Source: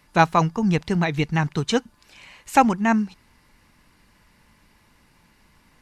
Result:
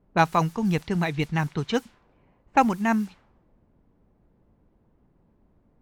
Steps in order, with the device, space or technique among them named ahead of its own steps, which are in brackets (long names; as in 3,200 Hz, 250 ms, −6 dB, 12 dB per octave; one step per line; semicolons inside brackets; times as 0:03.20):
cassette deck with a dynamic noise filter (white noise bed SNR 25 dB; low-pass that shuts in the quiet parts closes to 380 Hz, open at −17 dBFS)
level −3.5 dB